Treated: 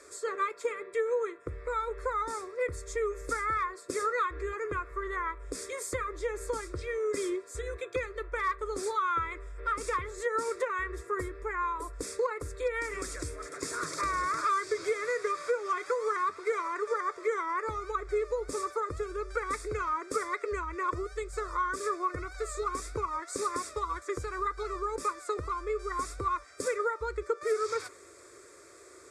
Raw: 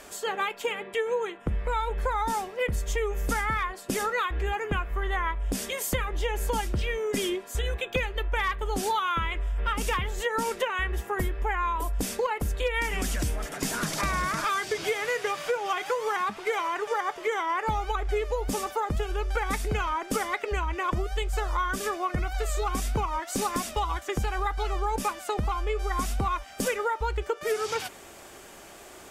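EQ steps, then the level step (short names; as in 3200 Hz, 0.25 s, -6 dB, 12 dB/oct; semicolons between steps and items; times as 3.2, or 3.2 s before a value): dynamic EQ 1100 Hz, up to +5 dB, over -42 dBFS, Q 1.5; speaker cabinet 110–8600 Hz, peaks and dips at 140 Hz -9 dB, 220 Hz -6 dB, 640 Hz -8 dB, 960 Hz -6 dB, 1600 Hz -8 dB, 6100 Hz -5 dB; fixed phaser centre 800 Hz, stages 6; 0.0 dB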